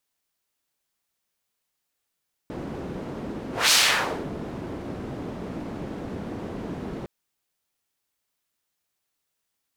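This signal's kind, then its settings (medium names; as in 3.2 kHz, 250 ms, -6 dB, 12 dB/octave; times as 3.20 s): whoosh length 4.56 s, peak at 1.21 s, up 0.20 s, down 0.61 s, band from 270 Hz, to 4.7 kHz, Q 0.96, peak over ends 16.5 dB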